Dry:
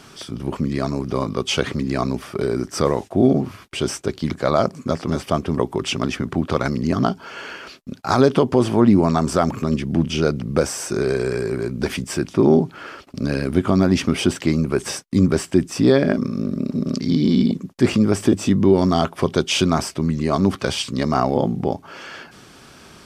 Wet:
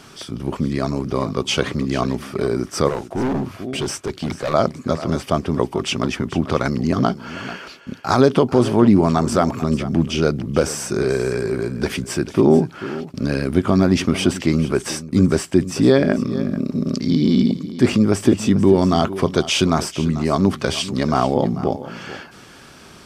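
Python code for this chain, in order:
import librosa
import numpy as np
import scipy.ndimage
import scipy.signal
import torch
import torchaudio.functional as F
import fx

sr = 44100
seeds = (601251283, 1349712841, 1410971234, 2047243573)

y = x + 10.0 ** (-15.0 / 20.0) * np.pad(x, (int(441 * sr / 1000.0), 0))[:len(x)]
y = fx.overload_stage(y, sr, gain_db=19.0, at=(2.89, 4.54))
y = y * 10.0 ** (1.0 / 20.0)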